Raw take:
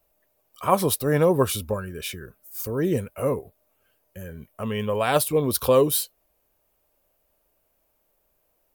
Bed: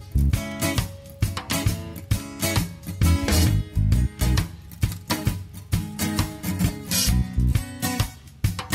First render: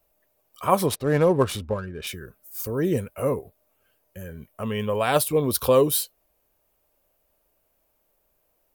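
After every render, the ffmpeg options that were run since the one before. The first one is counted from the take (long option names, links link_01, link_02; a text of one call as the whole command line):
ffmpeg -i in.wav -filter_complex "[0:a]asettb=1/sr,asplit=3[link_01][link_02][link_03];[link_01]atrim=end=0.864[link_04];[link_02]atrim=start=0.86:end=2.07,asetpts=PTS-STARTPTS,afade=type=in:duration=0.004:curve=qsin,afade=type=out:start_time=1.206:duration=0.004:curve=qsin,adynamicsmooth=sensitivity=8:basefreq=2100[link_05];[link_03]atrim=start=2.066[link_06];[link_04][link_05]acrossfade=duration=0.004:curve1=hsin:curve2=qsin[link_07];[link_07][link_06]acrossfade=duration=0.004:curve1=qsin:curve2=hsin" out.wav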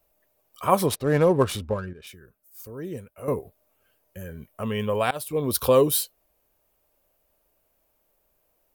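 ffmpeg -i in.wav -filter_complex "[0:a]asplit=4[link_01][link_02][link_03][link_04];[link_01]atrim=end=1.932[link_05];[link_02]atrim=start=1.928:end=3.282,asetpts=PTS-STARTPTS,volume=-11dB[link_06];[link_03]atrim=start=3.278:end=5.11,asetpts=PTS-STARTPTS,afade=type=out:start_time=1.828:duration=0.004:curve=hsin:silence=0.0841395[link_07];[link_04]atrim=start=5.11,asetpts=PTS-STARTPTS,afade=type=in:duration=0.46:silence=0.0841395[link_08];[link_05][link_06]acrossfade=duration=0.004:curve1=hsin:curve2=hsin[link_09];[link_07][link_08]concat=n=2:v=0:a=1[link_10];[link_09][link_10]acrossfade=duration=0.004:curve1=hsin:curve2=hsin" out.wav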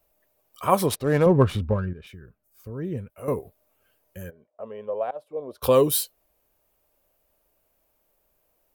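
ffmpeg -i in.wav -filter_complex "[0:a]asettb=1/sr,asplit=3[link_01][link_02][link_03];[link_01]atrim=end=1.264[link_04];[link_02]atrim=start=1.26:end=3.1,asetpts=PTS-STARTPTS,afade=type=in:duration=0.004:curve=qsin,afade=type=out:start_time=1.836:duration=0.004:curve=qsin,bass=frequency=250:gain=8,treble=frequency=4000:gain=-12[link_05];[link_03]atrim=start=3.096[link_06];[link_04][link_05]acrossfade=duration=0.004:curve1=hsin:curve2=qsin[link_07];[link_07][link_06]acrossfade=duration=0.004:curve1=qsin:curve2=hsin,asplit=3[link_08][link_09][link_10];[link_08]afade=type=out:start_time=4.29:duration=0.02[link_11];[link_09]bandpass=frequency=600:width_type=q:width=2.9,afade=type=in:start_time=4.29:duration=0.02,afade=type=out:start_time=5.62:duration=0.02[link_12];[link_10]afade=type=in:start_time=5.62:duration=0.02[link_13];[link_11][link_12][link_13]amix=inputs=3:normalize=0" out.wav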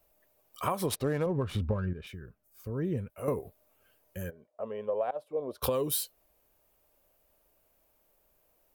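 ffmpeg -i in.wav -af "alimiter=limit=-12.5dB:level=0:latency=1:release=225,acompressor=threshold=-26dB:ratio=12" out.wav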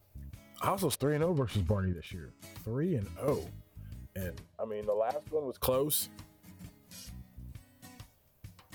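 ffmpeg -i in.wav -i bed.wav -filter_complex "[1:a]volume=-27dB[link_01];[0:a][link_01]amix=inputs=2:normalize=0" out.wav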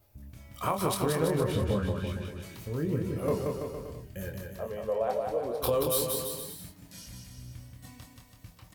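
ffmpeg -i in.wav -filter_complex "[0:a]asplit=2[link_01][link_02];[link_02]adelay=25,volume=-5.5dB[link_03];[link_01][link_03]amix=inputs=2:normalize=0,aecho=1:1:180|333|463|573.6|667.6:0.631|0.398|0.251|0.158|0.1" out.wav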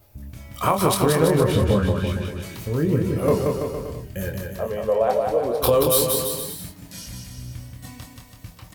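ffmpeg -i in.wav -af "volume=9.5dB" out.wav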